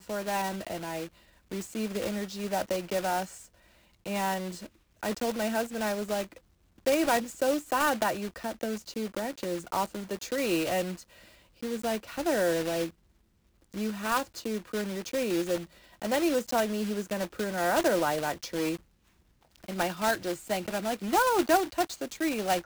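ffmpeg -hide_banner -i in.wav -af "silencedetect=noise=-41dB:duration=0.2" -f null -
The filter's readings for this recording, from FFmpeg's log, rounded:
silence_start: 1.08
silence_end: 1.51 | silence_duration: 0.44
silence_start: 3.46
silence_end: 4.06 | silence_duration: 0.60
silence_start: 4.67
silence_end: 5.03 | silence_duration: 0.36
silence_start: 6.37
silence_end: 6.86 | silence_duration: 0.49
silence_start: 11.03
silence_end: 11.63 | silence_duration: 0.60
silence_start: 12.90
silence_end: 13.73 | silence_duration: 0.83
silence_start: 15.65
silence_end: 16.02 | silence_duration: 0.36
silence_start: 18.77
silence_end: 19.56 | silence_duration: 0.78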